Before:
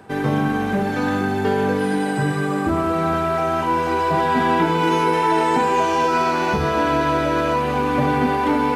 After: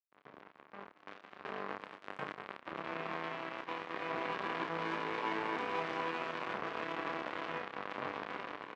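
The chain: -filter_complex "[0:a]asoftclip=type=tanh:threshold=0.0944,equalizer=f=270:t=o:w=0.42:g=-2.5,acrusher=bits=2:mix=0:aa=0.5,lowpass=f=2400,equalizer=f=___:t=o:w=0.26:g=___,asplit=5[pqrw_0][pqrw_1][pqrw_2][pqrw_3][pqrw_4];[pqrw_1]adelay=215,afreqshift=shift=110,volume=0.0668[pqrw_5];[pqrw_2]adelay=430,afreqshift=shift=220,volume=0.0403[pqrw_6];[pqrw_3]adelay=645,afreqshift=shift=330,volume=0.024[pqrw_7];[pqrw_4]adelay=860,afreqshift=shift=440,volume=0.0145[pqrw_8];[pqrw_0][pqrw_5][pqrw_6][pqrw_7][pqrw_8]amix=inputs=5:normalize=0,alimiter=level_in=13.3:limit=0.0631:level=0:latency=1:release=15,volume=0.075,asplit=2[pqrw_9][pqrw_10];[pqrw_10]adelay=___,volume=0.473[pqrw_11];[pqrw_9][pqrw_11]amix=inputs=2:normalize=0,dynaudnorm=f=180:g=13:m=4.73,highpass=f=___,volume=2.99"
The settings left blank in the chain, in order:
1100, 4.5, 30, 210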